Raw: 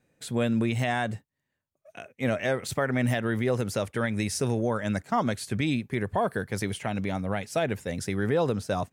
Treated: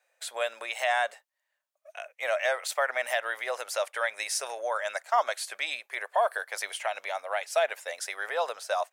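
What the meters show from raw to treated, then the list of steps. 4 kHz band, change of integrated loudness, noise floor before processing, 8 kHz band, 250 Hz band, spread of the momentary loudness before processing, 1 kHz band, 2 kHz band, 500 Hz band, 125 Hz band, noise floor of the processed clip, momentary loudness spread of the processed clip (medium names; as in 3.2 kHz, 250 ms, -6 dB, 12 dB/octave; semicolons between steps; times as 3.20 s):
+2.5 dB, -2.0 dB, -83 dBFS, +2.0 dB, under -30 dB, 6 LU, +2.5 dB, +3.0 dB, -2.0 dB, under -40 dB, -82 dBFS, 7 LU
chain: elliptic high-pass 600 Hz, stop band 80 dB; trim +3 dB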